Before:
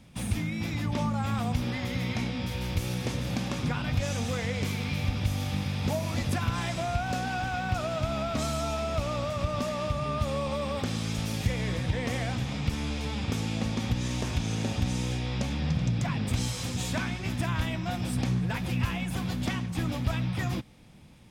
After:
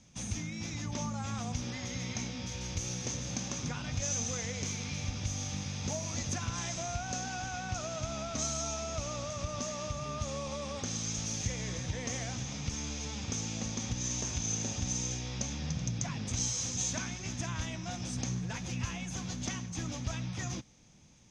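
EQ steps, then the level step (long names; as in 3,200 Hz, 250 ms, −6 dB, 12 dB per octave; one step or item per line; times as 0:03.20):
low-pass with resonance 6,300 Hz, resonance Q 12
−8.0 dB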